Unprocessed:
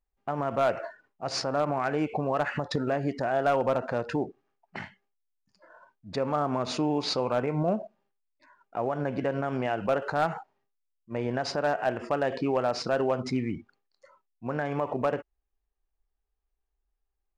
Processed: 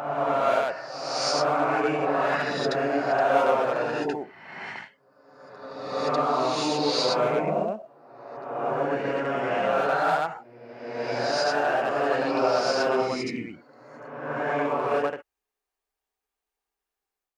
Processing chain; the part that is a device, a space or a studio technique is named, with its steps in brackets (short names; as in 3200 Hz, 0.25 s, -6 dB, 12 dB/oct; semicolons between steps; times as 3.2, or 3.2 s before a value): ghost voice (reverse; reverb RT60 1.6 s, pre-delay 66 ms, DRR -7 dB; reverse; HPF 670 Hz 6 dB/oct)